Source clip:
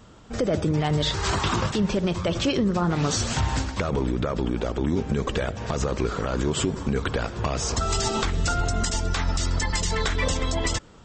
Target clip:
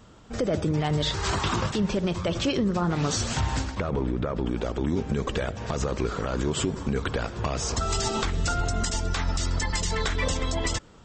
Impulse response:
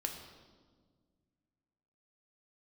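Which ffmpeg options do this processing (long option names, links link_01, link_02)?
-filter_complex "[0:a]asettb=1/sr,asplit=3[link_01][link_02][link_03];[link_01]atrim=end=3.754[link_04];[link_02]atrim=start=3.75:end=4.46,asetpts=PTS-STARTPTS,afade=type=in:duration=0.004:curve=qsin,afade=type=out:start_time=0.706:duration=0.004:curve=qsin,lowpass=frequency=2200:poles=1[link_05];[link_03]atrim=start=4.456[link_06];[link_04][link_05]acrossfade=duration=0.004:curve1=hsin:curve2=qsin[link_07];[link_07][link_06]acrossfade=duration=0.004:curve1=qsin:curve2=hsin,volume=-2dB"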